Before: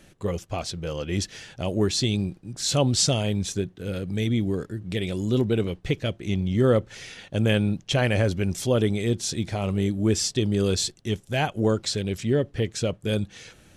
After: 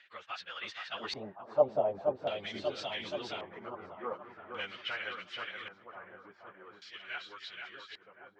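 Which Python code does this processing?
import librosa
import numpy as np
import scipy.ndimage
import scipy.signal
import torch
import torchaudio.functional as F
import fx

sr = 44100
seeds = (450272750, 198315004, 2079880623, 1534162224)

p1 = fx.doppler_pass(x, sr, speed_mps=23, closest_m=18.0, pass_at_s=3.2)
p2 = fx.stretch_vocoder_free(p1, sr, factor=0.61)
p3 = fx.high_shelf(p2, sr, hz=5300.0, db=-4.5)
p4 = p3 + fx.echo_feedback(p3, sr, ms=1066, feedback_pct=30, wet_db=-9.0, dry=0)
p5 = fx.auto_wah(p4, sr, base_hz=590.0, top_hz=1700.0, q=2.2, full_db=-26.5, direction='down')
p6 = fx.tilt_shelf(p5, sr, db=-10.0, hz=1100.0)
p7 = p6 + 10.0 ** (-5.5 / 20.0) * np.pad(p6, (int(475 * sr / 1000.0), 0))[:len(p6)]
p8 = fx.rider(p7, sr, range_db=5, speed_s=0.5)
p9 = p7 + (p8 * 10.0 ** (1.0 / 20.0))
p10 = fx.filter_lfo_lowpass(p9, sr, shape='square', hz=0.44, low_hz=930.0, high_hz=3600.0, q=1.6)
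y = p10 * 10.0 ** (3.0 / 20.0)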